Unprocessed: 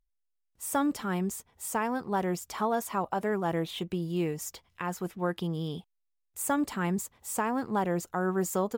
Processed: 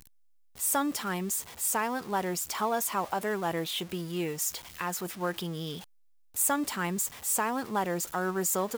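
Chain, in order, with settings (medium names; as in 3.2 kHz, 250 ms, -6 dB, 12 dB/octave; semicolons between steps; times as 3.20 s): jump at every zero crossing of -42.5 dBFS; tilt EQ +2 dB/octave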